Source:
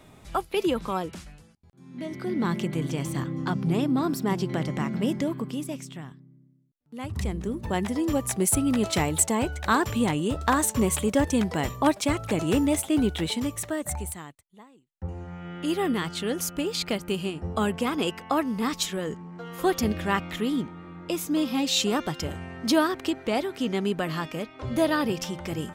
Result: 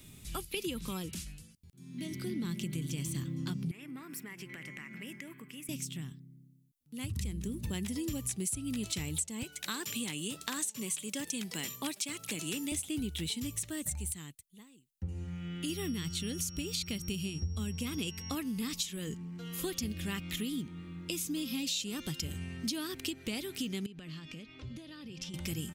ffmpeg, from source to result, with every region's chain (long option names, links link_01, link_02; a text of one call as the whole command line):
ffmpeg -i in.wav -filter_complex "[0:a]asettb=1/sr,asplit=3[link_01][link_02][link_03];[link_01]atrim=end=3.714[link_04];[link_02]atrim=start=3.71:end=5.69,asetpts=PTS-STARTPTS,afade=type=in:duration=0.004:curve=qsin,afade=type=out:start_time=1.976:duration=0.004:curve=qsin,highpass=frequency=1300:poles=1,highshelf=frequency=2900:width_type=q:width=3:gain=-11,acompressor=threshold=-35dB:ratio=4:attack=3.2:release=140:knee=1:detection=peak[link_05];[link_03]atrim=start=5.686[link_06];[link_04][link_05]acrossfade=duration=0.004:curve1=hsin:curve2=qsin[link_07];[link_07][link_06]acrossfade=duration=0.004:curve1=qsin:curve2=hsin,asettb=1/sr,asplit=3[link_08][link_09][link_10];[link_08]atrim=end=9.434[link_11];[link_09]atrim=start=9.43:end=12.72,asetpts=PTS-STARTPTS,afade=type=in:duration=0.004:curve=qsin,afade=type=out:start_time=3.286:duration=0.004:curve=qsin,highpass=frequency=150:width=0.5412,highpass=frequency=150:width=1.3066,lowshelf=frequency=380:gain=-9.5[link_12];[link_10]atrim=start=12.716[link_13];[link_11][link_12]acrossfade=duration=0.004:curve1=hsin:curve2=qsin[link_14];[link_14][link_13]acrossfade=duration=0.004:curve1=qsin:curve2=hsin,asettb=1/sr,asplit=3[link_15][link_16][link_17];[link_15]atrim=end=15.694[link_18];[link_16]atrim=start=15.69:end=18.35,asetpts=PTS-STARTPTS,afade=type=in:duration=0.004:curve=qsin,afade=type=out:start_time=2.656:duration=0.004:curve=qsin,bandreject=frequency=5000:width=18,aeval=exprs='val(0)+0.00447*sin(2*PI*5600*n/s)':channel_layout=same,equalizer=frequency=78:width=1:gain=13.5[link_19];[link_17]atrim=start=18.346[link_20];[link_18][link_19]acrossfade=duration=0.004:curve1=hsin:curve2=qsin[link_21];[link_21][link_20]acrossfade=duration=0.004:curve1=qsin:curve2=hsin,asettb=1/sr,asplit=3[link_22][link_23][link_24];[link_22]atrim=end=23.864[link_25];[link_23]atrim=start=23.86:end=25.34,asetpts=PTS-STARTPTS,afade=type=in:duration=0.004:curve=qsin,afade=type=out:start_time=1.476:duration=0.004:curve=qsin,lowpass=4900,acompressor=threshold=-38dB:ratio=12:attack=3.2:release=140:knee=1:detection=peak[link_26];[link_24]atrim=start=25.336[link_27];[link_25][link_26]acrossfade=duration=0.004:curve1=hsin:curve2=qsin[link_28];[link_28][link_27]acrossfade=duration=0.004:curve1=qsin:curve2=hsin,acrossover=split=9100[link_29][link_30];[link_30]acompressor=threshold=-49dB:ratio=4:attack=1:release=60[link_31];[link_29][link_31]amix=inputs=2:normalize=0,firequalizer=gain_entry='entry(150,0);entry(680,-18);entry(2600,1);entry(11000,10)':delay=0.05:min_phase=1,acompressor=threshold=-33dB:ratio=6" out.wav